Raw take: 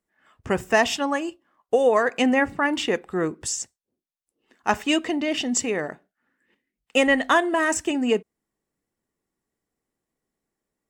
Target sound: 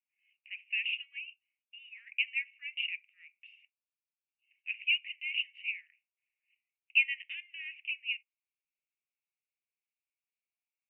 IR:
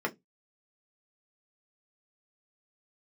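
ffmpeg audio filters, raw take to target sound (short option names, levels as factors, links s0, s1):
-filter_complex "[0:a]asuperpass=centerf=2500:order=8:qfactor=3.7,asplit=2[s0][s1];[1:a]atrim=start_sample=2205[s2];[s1][s2]afir=irnorm=-1:irlink=0,volume=0.1[s3];[s0][s3]amix=inputs=2:normalize=0"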